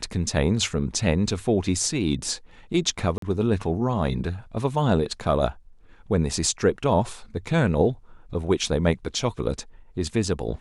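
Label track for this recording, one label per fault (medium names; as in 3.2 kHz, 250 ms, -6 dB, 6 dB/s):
3.180000	3.220000	dropout 43 ms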